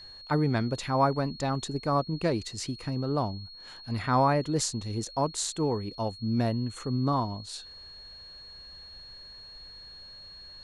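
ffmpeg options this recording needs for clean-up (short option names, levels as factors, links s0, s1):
-af "bandreject=f=4300:w=30"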